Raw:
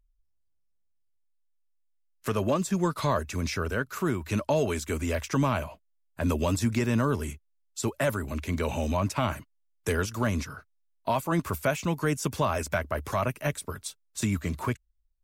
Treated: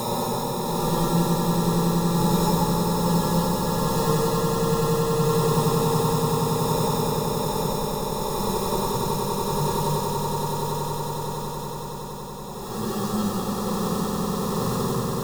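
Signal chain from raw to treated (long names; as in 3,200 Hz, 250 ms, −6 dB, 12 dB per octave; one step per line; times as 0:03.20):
spectral envelope flattened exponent 0.6
decimation without filtering 29×
extreme stretch with random phases 4.1×, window 0.25 s, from 0:11.09
phaser with its sweep stopped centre 440 Hz, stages 8
echo that builds up and dies away 94 ms, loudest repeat 8, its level −8.5 dB
level +3.5 dB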